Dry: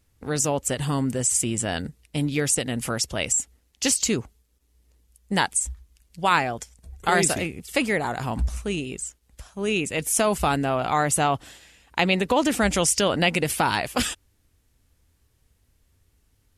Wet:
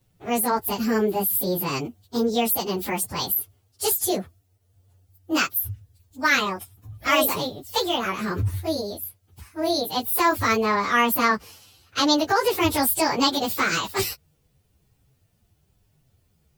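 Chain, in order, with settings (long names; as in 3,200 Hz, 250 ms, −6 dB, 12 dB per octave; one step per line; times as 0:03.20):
phase-vocoder pitch shift without resampling +8 semitones
level +4 dB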